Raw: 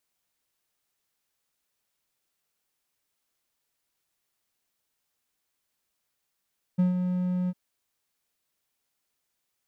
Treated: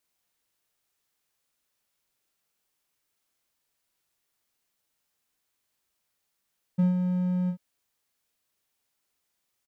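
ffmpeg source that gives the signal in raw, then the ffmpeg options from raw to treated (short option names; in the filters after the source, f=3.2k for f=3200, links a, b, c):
-f lavfi -i "aevalsrc='0.158*(1-4*abs(mod(181*t+0.25,1)-0.5))':d=0.753:s=44100,afade=t=in:d=0.016,afade=t=out:st=0.016:d=0.134:silence=0.473,afade=t=out:st=0.71:d=0.043"
-filter_complex "[0:a]asplit=2[a][b];[b]adelay=40,volume=-6.5dB[c];[a][c]amix=inputs=2:normalize=0"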